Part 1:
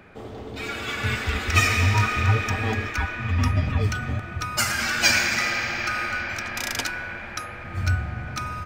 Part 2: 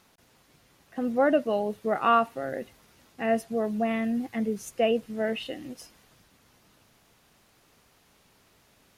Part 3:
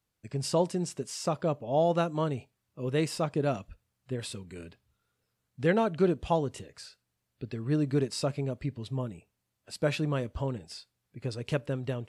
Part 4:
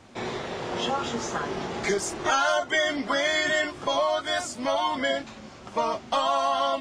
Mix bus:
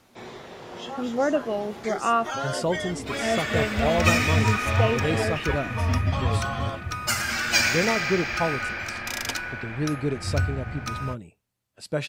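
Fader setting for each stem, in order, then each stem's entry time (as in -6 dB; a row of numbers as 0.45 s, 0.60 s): -2.0 dB, -1.0 dB, +0.5 dB, -8.5 dB; 2.50 s, 0.00 s, 2.10 s, 0.00 s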